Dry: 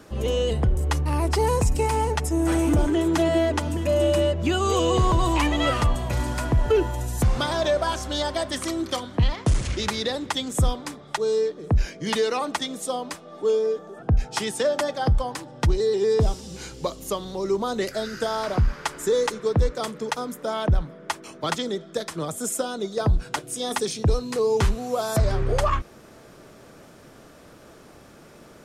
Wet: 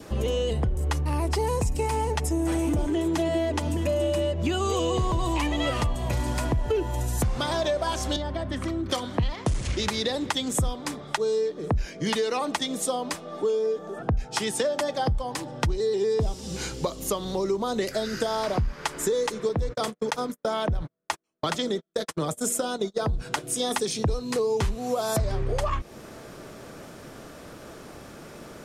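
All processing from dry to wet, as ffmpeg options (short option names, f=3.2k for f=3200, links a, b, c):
-filter_complex "[0:a]asettb=1/sr,asplit=3[a][b][c];[a]atrim=end=8.164[d];[b]atrim=start=8.16:end=8.9,asetpts=PTS-STARTPTS,afade=t=in:d=0.004:c=qsin,afade=t=out:st=0.736:d=0.004:c=qsin,bass=f=250:g=8,treble=f=4k:g=-14,acrossover=split=110|240[e][f][g];[e]acompressor=threshold=-39dB:ratio=4[h];[f]acompressor=threshold=-42dB:ratio=4[i];[g]acompressor=threshold=-36dB:ratio=4[j];[h][i][j]amix=inputs=3:normalize=0[k];[c]atrim=start=8.896[l];[d][k]acrossfade=d=0.004:c1=hsin:c2=qsin[m];[m][l]acrossfade=d=0.004:c1=qsin:c2=hsin,asettb=1/sr,asplit=3[n][o][p];[n]atrim=end=19.494[q];[o]atrim=start=19.49:end=23.23,asetpts=PTS-STARTPTS,afade=t=in:d=0.004:c=qsin,afade=t=out:st=3.736:d=0.004:c=qsin,bandreject=f=119.1:t=h:w=4,bandreject=f=238.2:t=h:w=4,bandreject=f=357.3:t=h:w=4,bandreject=f=476.4:t=h:w=4,bandreject=f=595.5:t=h:w=4,bandreject=f=714.6:t=h:w=4,agate=range=-46dB:threshold=-33dB:ratio=16:release=100:detection=peak,acompressor=threshold=-21dB:ratio=3:attack=3.2:release=140:knee=1:detection=peak[r];[p]atrim=start=23.226[s];[q][r]acrossfade=d=0.004:c1=hsin:c2=qsin[t];[t][s]acrossfade=d=0.004:c1=qsin:c2=hsin,adynamicequalizer=threshold=0.00562:dfrequency=1400:dqfactor=2.9:tfrequency=1400:tqfactor=2.9:attack=5:release=100:ratio=0.375:range=3:mode=cutabove:tftype=bell,acompressor=threshold=-29dB:ratio=4,volume=5dB"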